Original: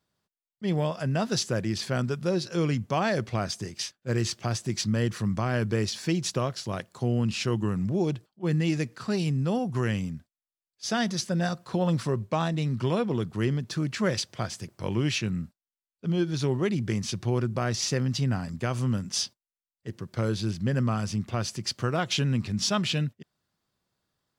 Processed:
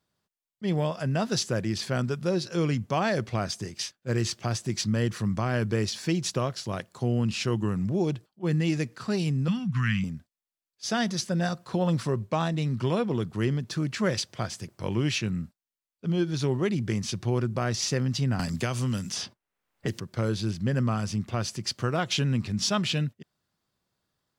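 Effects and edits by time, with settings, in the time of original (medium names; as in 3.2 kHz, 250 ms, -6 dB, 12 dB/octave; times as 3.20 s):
9.48–10.04 s: FFT filter 100 Hz 0 dB, 170 Hz +7 dB, 260 Hz -4 dB, 400 Hz -28 dB, 690 Hz -22 dB, 1.2 kHz +3 dB, 2.3 kHz +7 dB, 10 kHz -9 dB
18.39–20.00 s: three bands compressed up and down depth 100%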